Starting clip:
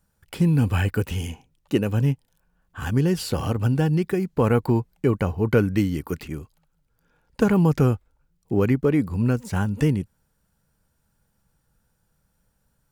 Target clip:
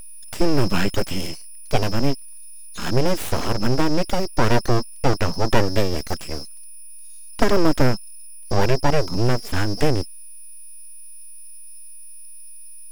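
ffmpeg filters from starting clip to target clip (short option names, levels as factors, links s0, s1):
-af "aeval=exprs='val(0)+0.0126*sin(2*PI*5200*n/s)':c=same,aeval=exprs='abs(val(0))':c=same,volume=1.78"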